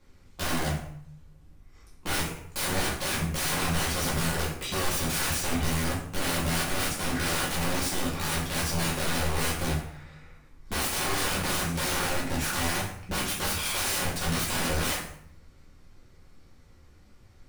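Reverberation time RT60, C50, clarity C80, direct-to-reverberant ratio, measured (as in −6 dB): 0.65 s, 4.5 dB, 8.0 dB, −6.0 dB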